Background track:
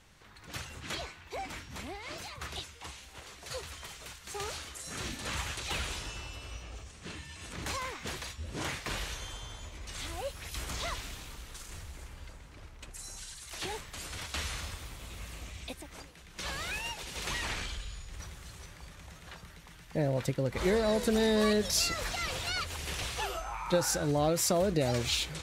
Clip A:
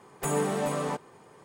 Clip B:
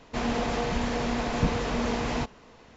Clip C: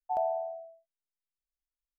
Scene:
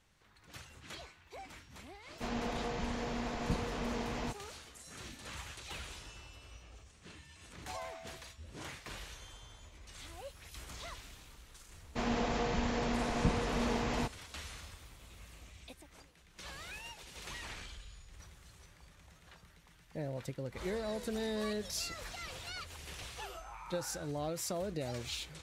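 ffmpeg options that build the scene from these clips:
-filter_complex "[2:a]asplit=2[a][b];[0:a]volume=-10dB[c];[b]agate=range=-33dB:threshold=-48dB:ratio=3:release=100:detection=peak[d];[a]atrim=end=2.76,asetpts=PTS-STARTPTS,volume=-9.5dB,afade=t=in:d=0.004:c=hsin,afade=t=out:st=2.756:d=0.004:c=hsin,adelay=2070[e];[3:a]atrim=end=1.98,asetpts=PTS-STARTPTS,volume=-16dB,afade=t=in:d=0.004:c=hsin,afade=t=out:st=1.976:d=0.004:c=hsin,adelay=7580[f];[d]atrim=end=2.76,asetpts=PTS-STARTPTS,volume=-5.5dB,afade=t=in:d=0.004:c=hsin,afade=t=out:st=2.756:d=0.004:c=hsin,adelay=11820[g];[c][e][f][g]amix=inputs=4:normalize=0"

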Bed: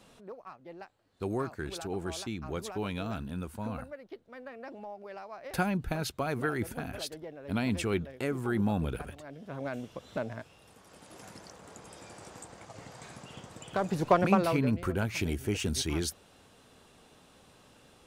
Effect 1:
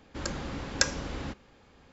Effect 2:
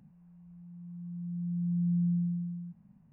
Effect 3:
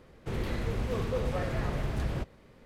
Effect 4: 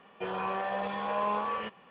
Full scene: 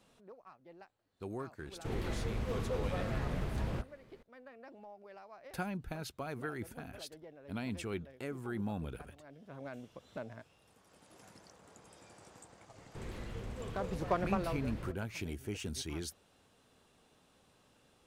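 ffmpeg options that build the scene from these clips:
-filter_complex "[3:a]asplit=2[a][b];[0:a]volume=-9dB[c];[a]atrim=end=2.65,asetpts=PTS-STARTPTS,volume=-5dB,afade=t=in:d=0.004:c=hsin,afade=t=out:st=2.646:d=0.004:c=hsin,adelay=1580[d];[b]atrim=end=2.65,asetpts=PTS-STARTPTS,volume=-11.5dB,afade=t=in:d=0.004:c=hsin,afade=t=out:st=2.646:d=0.004:c=hsin,adelay=559188S[e];[c][d][e]amix=inputs=3:normalize=0"

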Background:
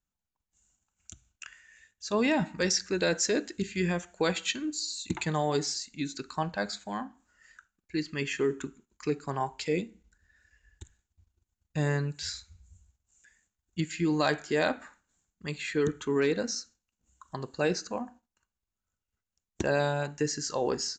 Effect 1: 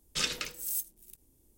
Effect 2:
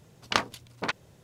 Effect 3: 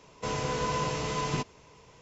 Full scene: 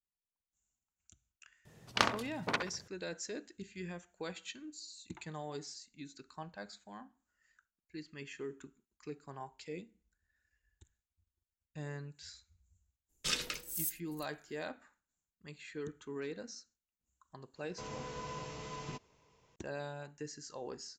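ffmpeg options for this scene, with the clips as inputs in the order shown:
-filter_complex "[0:a]volume=-15dB[a];[2:a]asplit=2[b][c];[c]adelay=66,lowpass=f=2k:p=1,volume=-5dB,asplit=2[d][e];[e]adelay=66,lowpass=f=2k:p=1,volume=0.35,asplit=2[f][g];[g]adelay=66,lowpass=f=2k:p=1,volume=0.35,asplit=2[h][i];[i]adelay=66,lowpass=f=2k:p=1,volume=0.35[j];[b][d][f][h][j]amix=inputs=5:normalize=0[k];[1:a]agate=range=-10dB:threshold=-57dB:ratio=16:release=100:detection=peak[l];[k]atrim=end=1.23,asetpts=PTS-STARTPTS,volume=-4dB,afade=t=in:d=0.004:c=hsin,afade=t=out:st=1.226:d=0.004:c=hsin,adelay=1650[m];[l]atrim=end=1.57,asetpts=PTS-STARTPTS,volume=-3.5dB,afade=t=in:d=0.004:c=hsin,afade=t=out:st=1.566:d=0.004:c=hsin,adelay=13090[n];[3:a]atrim=end=2.01,asetpts=PTS-STARTPTS,volume=-13.5dB,afade=t=in:d=0.004:c=hsin,afade=t=out:st=2.006:d=0.004:c=hsin,adelay=17550[o];[a][m][n][o]amix=inputs=4:normalize=0"

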